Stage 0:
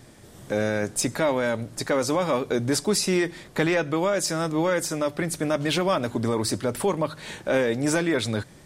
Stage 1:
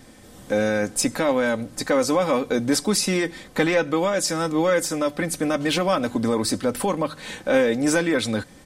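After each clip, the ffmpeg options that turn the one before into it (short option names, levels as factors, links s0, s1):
-af "aecho=1:1:3.9:0.5,volume=1.19"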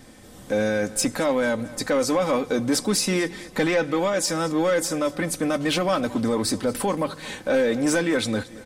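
-af "aecho=1:1:223|446|669|892:0.0944|0.0453|0.0218|0.0104,asoftclip=type=tanh:threshold=0.237"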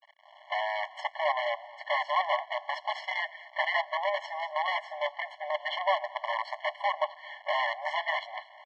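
-af "acrusher=bits=4:dc=4:mix=0:aa=0.000001,lowpass=f=3000:w=0.5412,lowpass=f=3000:w=1.3066,afftfilt=real='re*eq(mod(floor(b*sr/1024/570),2),1)':imag='im*eq(mod(floor(b*sr/1024/570),2),1)':win_size=1024:overlap=0.75"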